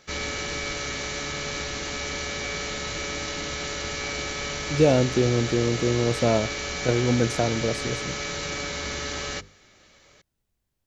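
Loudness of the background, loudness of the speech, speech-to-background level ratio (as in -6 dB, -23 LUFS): -29.5 LUFS, -24.0 LUFS, 5.5 dB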